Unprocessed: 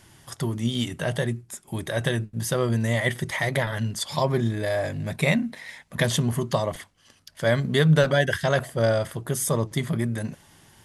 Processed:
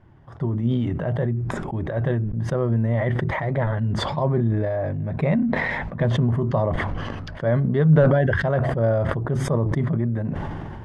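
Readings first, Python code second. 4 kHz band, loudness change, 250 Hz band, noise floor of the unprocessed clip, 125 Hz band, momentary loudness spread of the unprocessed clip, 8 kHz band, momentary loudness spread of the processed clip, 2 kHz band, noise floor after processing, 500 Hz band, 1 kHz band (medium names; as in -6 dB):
-8.0 dB, +2.5 dB, +3.5 dB, -59 dBFS, +5.0 dB, 11 LU, under -10 dB, 8 LU, -1.5 dB, -35 dBFS, +1.5 dB, +2.0 dB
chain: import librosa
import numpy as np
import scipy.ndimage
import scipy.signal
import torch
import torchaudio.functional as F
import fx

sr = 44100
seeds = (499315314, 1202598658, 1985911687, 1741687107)

y = scipy.signal.sosfilt(scipy.signal.butter(2, 1100.0, 'lowpass', fs=sr, output='sos'), x)
y = fx.low_shelf(y, sr, hz=92.0, db=7.5)
y = fx.sustainer(y, sr, db_per_s=21.0)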